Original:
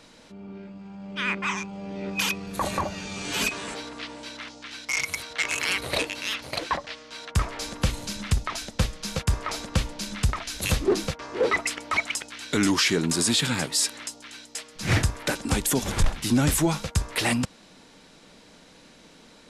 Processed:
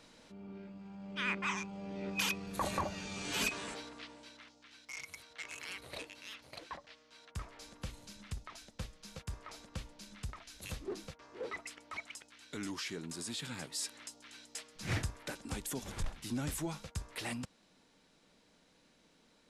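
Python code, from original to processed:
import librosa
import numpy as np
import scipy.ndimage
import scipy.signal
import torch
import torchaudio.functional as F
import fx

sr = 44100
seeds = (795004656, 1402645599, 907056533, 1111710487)

y = fx.gain(x, sr, db=fx.line((3.63, -8.0), (4.55, -19.0), (13.29, -19.0), (14.54, -9.5), (15.28, -16.0)))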